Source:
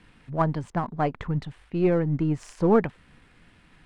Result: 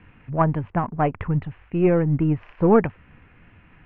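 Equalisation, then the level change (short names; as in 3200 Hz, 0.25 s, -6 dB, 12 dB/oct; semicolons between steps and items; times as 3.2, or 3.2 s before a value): Chebyshev low-pass 2700 Hz, order 4; bell 93 Hz +9 dB 0.66 oct; +4.0 dB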